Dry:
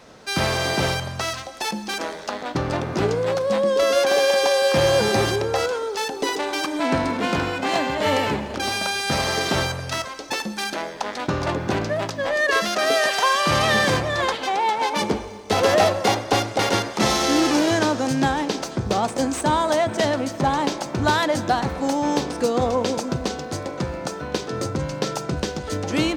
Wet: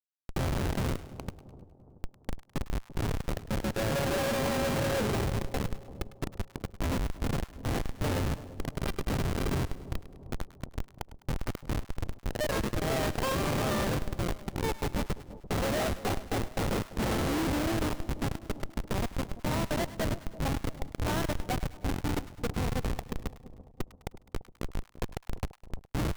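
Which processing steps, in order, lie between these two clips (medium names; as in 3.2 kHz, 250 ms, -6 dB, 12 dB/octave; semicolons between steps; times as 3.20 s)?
Schmitt trigger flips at -16 dBFS; two-band feedback delay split 840 Hz, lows 340 ms, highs 103 ms, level -15 dB; trim -6.5 dB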